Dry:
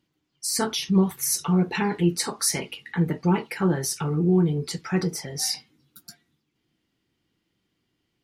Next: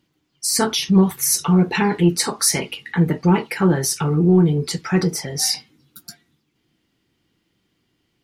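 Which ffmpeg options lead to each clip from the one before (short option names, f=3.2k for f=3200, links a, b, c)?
-af "acontrast=65"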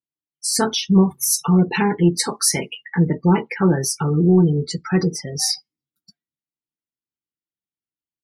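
-af "afftdn=nr=35:nf=-27"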